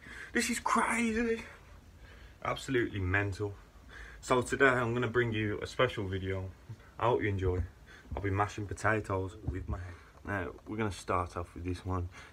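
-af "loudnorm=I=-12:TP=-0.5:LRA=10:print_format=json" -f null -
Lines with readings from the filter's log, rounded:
"input_i" : "-33.7",
"input_tp" : "-10.2",
"input_lra" : "6.1",
"input_thresh" : "-44.3",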